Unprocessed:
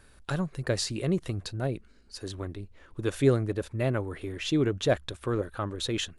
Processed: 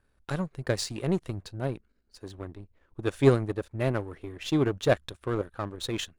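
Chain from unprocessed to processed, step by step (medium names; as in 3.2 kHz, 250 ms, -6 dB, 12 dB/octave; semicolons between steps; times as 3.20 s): power-law waveshaper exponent 1.4; tape noise reduction on one side only decoder only; trim +4.5 dB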